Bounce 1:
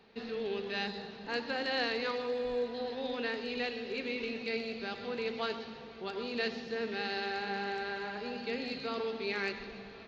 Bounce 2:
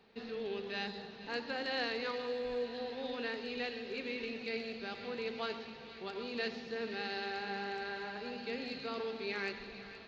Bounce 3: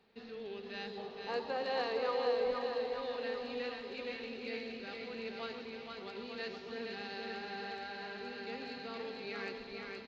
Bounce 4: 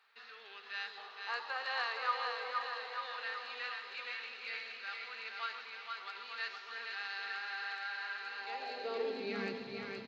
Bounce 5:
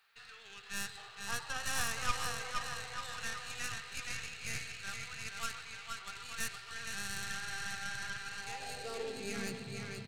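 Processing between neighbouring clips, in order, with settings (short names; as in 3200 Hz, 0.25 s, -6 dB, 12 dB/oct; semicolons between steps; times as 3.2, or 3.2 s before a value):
thin delay 0.471 s, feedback 79%, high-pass 1700 Hz, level -13.5 dB; gain -3.5 dB
spectral gain 0.97–2.51, 380–1300 Hz +9 dB; bouncing-ball echo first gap 0.47 s, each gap 0.9×, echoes 5; gain -5 dB
high-pass sweep 1300 Hz -> 120 Hz, 8.28–9.72; gain +1 dB
tracing distortion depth 0.15 ms; graphic EQ 125/250/500/1000/2000/4000 Hz +11/-12/-9/-10/-6/-6 dB; gain +8.5 dB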